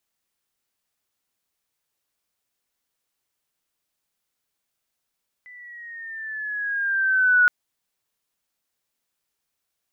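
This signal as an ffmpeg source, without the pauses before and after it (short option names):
-f lavfi -i "aevalsrc='pow(10,(-12+29.5*(t/2.02-1))/20)*sin(2*PI*2000*2.02/(-5.5*log(2)/12)*(exp(-5.5*log(2)/12*t/2.02)-1))':d=2.02:s=44100"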